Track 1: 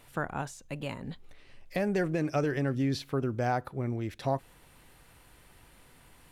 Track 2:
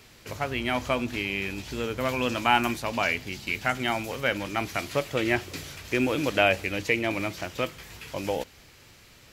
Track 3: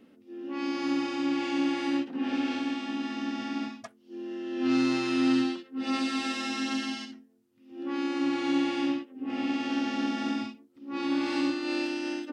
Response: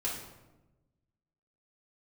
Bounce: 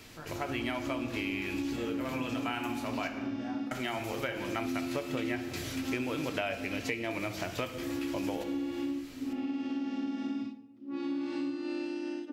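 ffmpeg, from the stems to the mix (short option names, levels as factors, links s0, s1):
-filter_complex "[0:a]flanger=delay=17.5:depth=2.6:speed=1.3,volume=0.178,asplit=3[s0][s1][s2];[s1]volume=0.531[s3];[1:a]volume=0.841,asplit=3[s4][s5][s6];[s4]atrim=end=3.08,asetpts=PTS-STARTPTS,afade=t=out:st=3.076:d=0.004:c=hsin[s7];[s5]atrim=start=3.08:end=3.71,asetpts=PTS-STARTPTS,volume=0[s8];[s6]atrim=start=3.71,asetpts=PTS-STARTPTS,afade=t=in:d=0.004:c=hsin[s9];[s7][s8][s9]concat=n=3:v=0:a=1,asplit=2[s10][s11];[s11]volume=0.355[s12];[2:a]lowshelf=f=410:g=11.5,volume=0.266,asplit=2[s13][s14];[s14]volume=0.188[s15];[s2]apad=whole_len=411413[s16];[s10][s16]sidechaincompress=threshold=0.002:ratio=3:attack=16:release=364[s17];[3:a]atrim=start_sample=2205[s18];[s3][s12][s15]amix=inputs=3:normalize=0[s19];[s19][s18]afir=irnorm=-1:irlink=0[s20];[s0][s17][s13][s20]amix=inputs=4:normalize=0,acompressor=threshold=0.0282:ratio=6"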